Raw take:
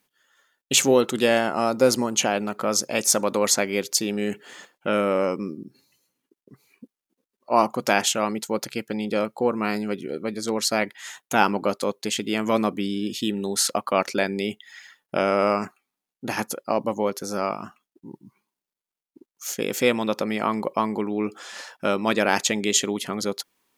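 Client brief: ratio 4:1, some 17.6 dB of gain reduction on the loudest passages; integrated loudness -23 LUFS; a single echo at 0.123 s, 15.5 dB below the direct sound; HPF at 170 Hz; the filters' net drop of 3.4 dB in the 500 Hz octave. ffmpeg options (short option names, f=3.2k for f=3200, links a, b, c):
-af "highpass=170,equalizer=f=500:t=o:g=-4,acompressor=threshold=-37dB:ratio=4,aecho=1:1:123:0.168,volume=16dB"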